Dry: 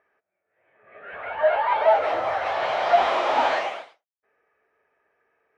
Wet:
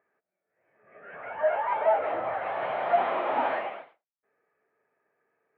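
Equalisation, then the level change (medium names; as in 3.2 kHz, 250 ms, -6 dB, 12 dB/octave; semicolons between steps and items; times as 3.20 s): Chebyshev band-pass 170–2600 Hz, order 2; distance through air 330 m; bass shelf 200 Hz +9.5 dB; -4.0 dB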